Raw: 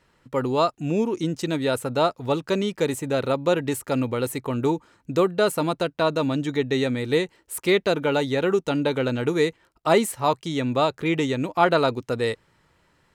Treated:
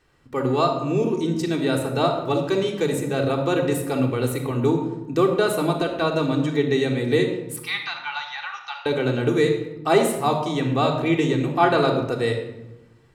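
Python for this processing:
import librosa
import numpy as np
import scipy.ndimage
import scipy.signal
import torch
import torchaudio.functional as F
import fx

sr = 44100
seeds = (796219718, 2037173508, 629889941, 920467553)

y = fx.cheby1_bandpass(x, sr, low_hz=810.0, high_hz=5900.0, order=5, at=(7.56, 8.86))
y = fx.room_shoebox(y, sr, seeds[0], volume_m3=3900.0, walls='furnished', distance_m=3.6)
y = F.gain(torch.from_numpy(y), -2.0).numpy()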